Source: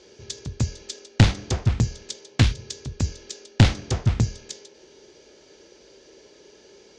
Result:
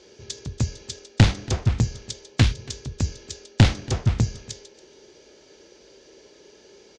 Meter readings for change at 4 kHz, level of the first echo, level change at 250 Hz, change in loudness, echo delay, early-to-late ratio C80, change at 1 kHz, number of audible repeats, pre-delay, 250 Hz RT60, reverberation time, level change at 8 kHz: 0.0 dB, -22.0 dB, 0.0 dB, 0.0 dB, 281 ms, no reverb, 0.0 dB, 1, no reverb, no reverb, no reverb, 0.0 dB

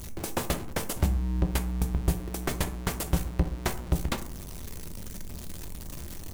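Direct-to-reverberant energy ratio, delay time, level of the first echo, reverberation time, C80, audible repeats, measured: 7.0 dB, no echo, no echo, 0.50 s, 18.0 dB, no echo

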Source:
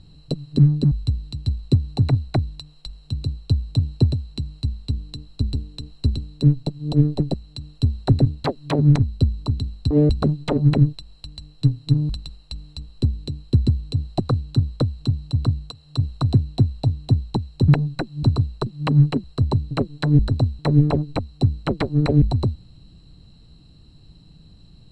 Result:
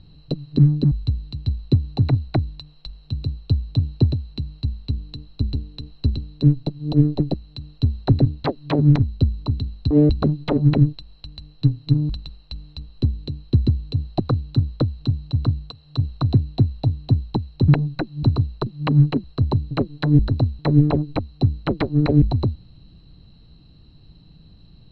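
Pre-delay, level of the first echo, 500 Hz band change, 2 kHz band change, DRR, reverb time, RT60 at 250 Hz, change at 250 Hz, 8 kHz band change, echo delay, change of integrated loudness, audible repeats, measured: no reverb, no echo, +0.5 dB, 0.0 dB, no reverb, no reverb, no reverb, +1.5 dB, no reading, no echo, +0.5 dB, no echo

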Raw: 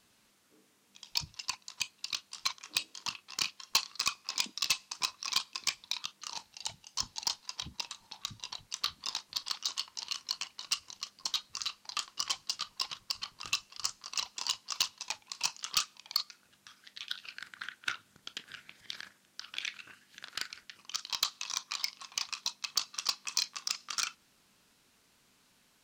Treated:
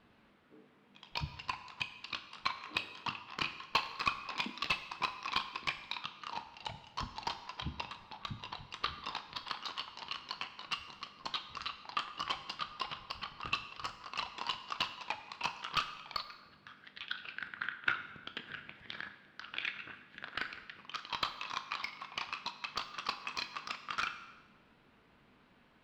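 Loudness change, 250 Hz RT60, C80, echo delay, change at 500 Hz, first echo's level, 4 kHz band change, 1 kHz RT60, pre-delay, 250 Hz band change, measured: -4.0 dB, 1.1 s, 12.5 dB, no echo, +6.5 dB, no echo, -6.5 dB, 1.2 s, 4 ms, +7.5 dB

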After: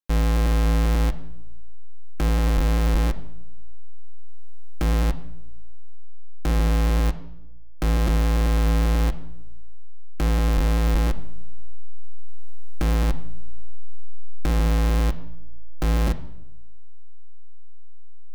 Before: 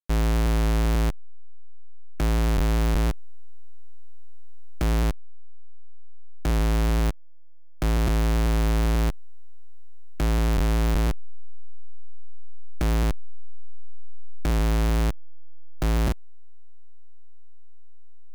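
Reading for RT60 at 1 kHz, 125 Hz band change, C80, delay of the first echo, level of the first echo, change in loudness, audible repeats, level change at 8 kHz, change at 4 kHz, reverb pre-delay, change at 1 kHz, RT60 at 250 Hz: 0.80 s, +2.0 dB, 18.0 dB, no echo, no echo, +2.0 dB, no echo, 0.0 dB, +1.0 dB, 4 ms, +1.5 dB, 1.1 s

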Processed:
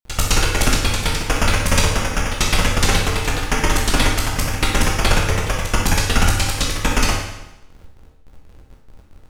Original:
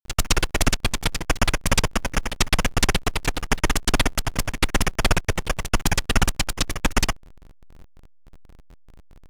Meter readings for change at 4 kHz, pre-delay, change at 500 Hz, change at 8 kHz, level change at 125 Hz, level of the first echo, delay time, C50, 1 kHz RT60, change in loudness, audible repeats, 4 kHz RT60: +4.5 dB, 14 ms, +5.0 dB, +4.5 dB, +6.0 dB, no echo, no echo, 2.5 dB, 0.95 s, +4.5 dB, no echo, 0.90 s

